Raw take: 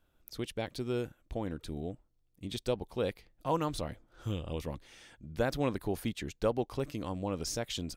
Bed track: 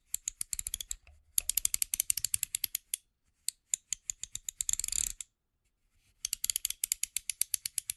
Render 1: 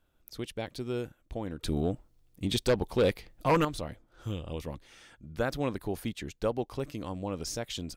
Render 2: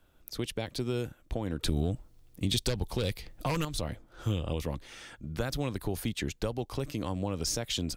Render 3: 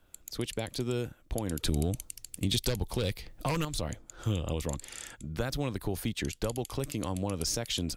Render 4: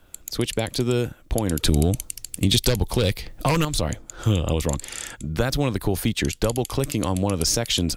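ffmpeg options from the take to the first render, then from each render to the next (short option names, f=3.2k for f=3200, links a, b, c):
-filter_complex "[0:a]asettb=1/sr,asplit=3[a][b][c];[a]atrim=end=1.634[d];[b]atrim=start=1.63:end=3.65,asetpts=PTS-STARTPTS,afade=t=in:d=0.004:c=qsin,afade=t=out:st=2.016:d=0.004:c=qsin,aeval=exprs='0.119*sin(PI/2*2*val(0)/0.119)':c=same[e];[c]atrim=start=3.646[f];[d][e]acrossfade=d=0.004:c1=hsin:c2=qsin[g];[g][f]acrossfade=d=0.004:c1=qsin:c2=hsin,asettb=1/sr,asplit=3[h][i][j];[h]atrim=end=4.904[k];[i]atrim=start=4.9:end=5.49,asetpts=PTS-STARTPTS,afade=t=in:d=0.004:c=qsin,afade=t=out:st=0.586:d=0.004:c=qsin,equalizer=f=1.3k:t=o:w=0.39:g=6[l];[j]atrim=start=5.486[m];[k][l]acrossfade=d=0.004:c1=hsin:c2=qsin[n];[n][m]acrossfade=d=0.004:c1=qsin:c2=hsin"
-filter_complex "[0:a]acrossover=split=140|3000[a][b][c];[b]acompressor=threshold=-36dB:ratio=6[d];[a][d][c]amix=inputs=3:normalize=0,asplit=2[e][f];[f]alimiter=level_in=5dB:limit=-24dB:level=0:latency=1:release=172,volume=-5dB,volume=2dB[g];[e][g]amix=inputs=2:normalize=0"
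-filter_complex "[1:a]volume=-13dB[a];[0:a][a]amix=inputs=2:normalize=0"
-af "volume=10dB"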